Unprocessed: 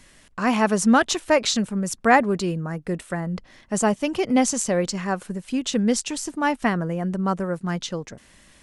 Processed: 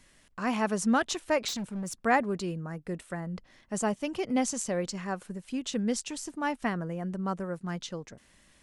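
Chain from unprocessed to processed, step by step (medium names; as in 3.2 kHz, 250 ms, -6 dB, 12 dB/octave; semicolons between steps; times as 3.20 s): 1.48–1.95 s: hard clipper -22.5 dBFS, distortion -23 dB; trim -8.5 dB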